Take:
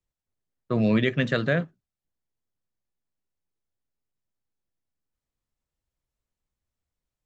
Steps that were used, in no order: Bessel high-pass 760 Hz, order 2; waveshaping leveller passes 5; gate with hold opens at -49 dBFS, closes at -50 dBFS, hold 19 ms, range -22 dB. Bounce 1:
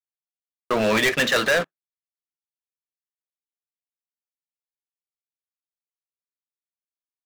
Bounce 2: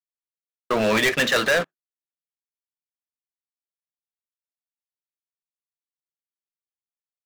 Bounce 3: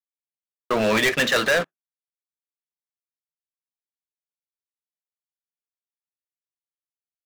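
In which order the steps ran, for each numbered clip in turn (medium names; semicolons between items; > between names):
Bessel high-pass > gate with hold > waveshaping leveller; gate with hold > Bessel high-pass > waveshaping leveller; Bessel high-pass > waveshaping leveller > gate with hold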